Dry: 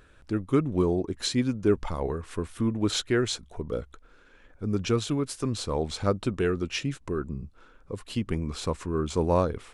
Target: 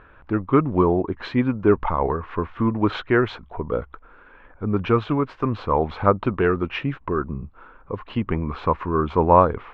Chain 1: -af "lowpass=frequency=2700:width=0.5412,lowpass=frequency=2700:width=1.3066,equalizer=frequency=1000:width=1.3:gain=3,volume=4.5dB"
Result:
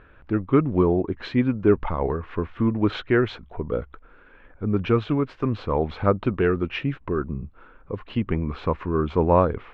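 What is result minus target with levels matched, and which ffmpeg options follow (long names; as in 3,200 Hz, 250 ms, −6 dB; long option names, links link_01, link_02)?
1,000 Hz band −4.5 dB
-af "lowpass=frequency=2700:width=0.5412,lowpass=frequency=2700:width=1.3066,equalizer=frequency=1000:width=1.3:gain=10.5,volume=4.5dB"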